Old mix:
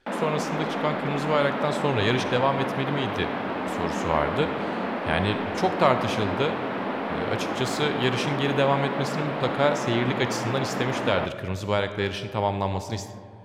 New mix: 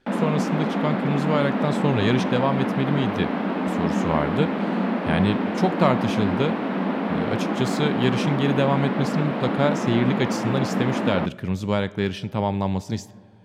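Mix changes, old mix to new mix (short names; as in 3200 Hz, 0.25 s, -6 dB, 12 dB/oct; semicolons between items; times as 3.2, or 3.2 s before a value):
speech: send -11.5 dB; master: add bell 190 Hz +10.5 dB 1.4 oct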